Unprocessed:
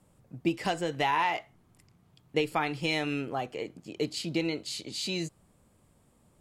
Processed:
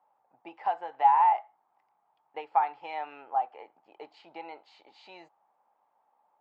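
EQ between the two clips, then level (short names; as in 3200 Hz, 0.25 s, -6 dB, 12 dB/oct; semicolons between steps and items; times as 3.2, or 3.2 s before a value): ladder band-pass 880 Hz, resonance 80%; air absorption 78 m; +7.5 dB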